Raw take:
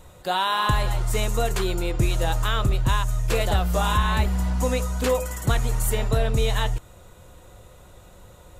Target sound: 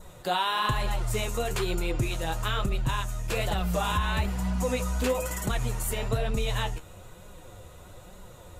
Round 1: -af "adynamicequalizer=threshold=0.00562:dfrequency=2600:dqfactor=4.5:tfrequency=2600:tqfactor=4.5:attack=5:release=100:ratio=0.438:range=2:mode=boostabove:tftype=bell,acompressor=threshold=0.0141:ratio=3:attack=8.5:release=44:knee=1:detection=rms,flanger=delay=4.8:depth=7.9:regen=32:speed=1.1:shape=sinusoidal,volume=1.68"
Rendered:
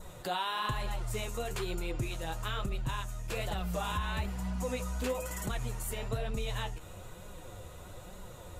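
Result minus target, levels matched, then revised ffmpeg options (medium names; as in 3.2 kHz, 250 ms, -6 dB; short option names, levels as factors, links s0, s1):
compression: peak gain reduction +7 dB
-af "adynamicequalizer=threshold=0.00562:dfrequency=2600:dqfactor=4.5:tfrequency=2600:tqfactor=4.5:attack=5:release=100:ratio=0.438:range=2:mode=boostabove:tftype=bell,acompressor=threshold=0.0473:ratio=3:attack=8.5:release=44:knee=1:detection=rms,flanger=delay=4.8:depth=7.9:regen=32:speed=1.1:shape=sinusoidal,volume=1.68"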